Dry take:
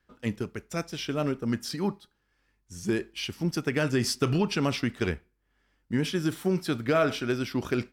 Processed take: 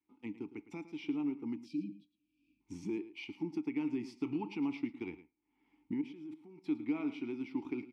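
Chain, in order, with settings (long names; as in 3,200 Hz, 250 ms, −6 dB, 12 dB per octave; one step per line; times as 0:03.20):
camcorder AGC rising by 24 dB per second
0:01.56–0:02.61: time-frequency box erased 340–2,300 Hz
0:06.01–0:06.64: output level in coarse steps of 19 dB
formant filter u
single-tap delay 109 ms −15 dB
level −1.5 dB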